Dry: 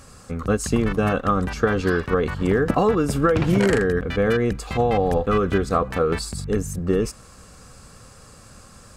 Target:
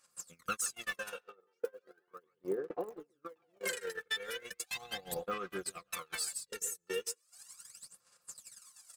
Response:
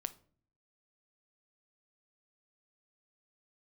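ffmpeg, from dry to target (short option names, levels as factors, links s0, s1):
-filter_complex "[0:a]acontrast=53,asplit=3[s0][s1][s2];[s0]afade=t=out:st=1.2:d=0.02[s3];[s1]bandpass=f=410:t=q:w=2.4:csg=0,afade=t=in:st=1.2:d=0.02,afade=t=out:st=3.65:d=0.02[s4];[s2]afade=t=in:st=3.65:d=0.02[s5];[s3][s4][s5]amix=inputs=3:normalize=0,aphaser=in_gain=1:out_gain=1:delay=2.3:decay=0.76:speed=0.37:type=sinusoidal,aderivative,aecho=1:1:5.7:0.49,asoftclip=type=tanh:threshold=0.237,alimiter=limit=0.0668:level=0:latency=1:release=103,asplit=2[s6][s7];[s7]adelay=140,highpass=300,lowpass=3400,asoftclip=type=hard:threshold=0.0224,volume=0.398[s8];[s6][s8]amix=inputs=2:normalize=0,acompressor=threshold=0.01:ratio=6,agate=range=0.0126:threshold=0.01:ratio=16:detection=peak,volume=3.55"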